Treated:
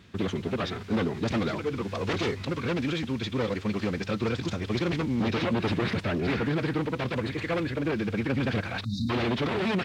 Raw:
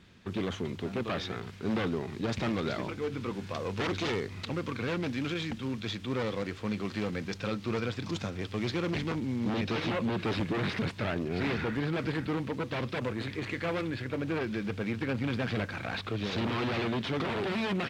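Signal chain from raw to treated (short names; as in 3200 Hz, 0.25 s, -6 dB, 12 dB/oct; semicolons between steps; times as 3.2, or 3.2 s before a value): spectral delete 16.07–16.54, 280–3600 Hz; time stretch by phase-locked vocoder 0.55×; gain +5 dB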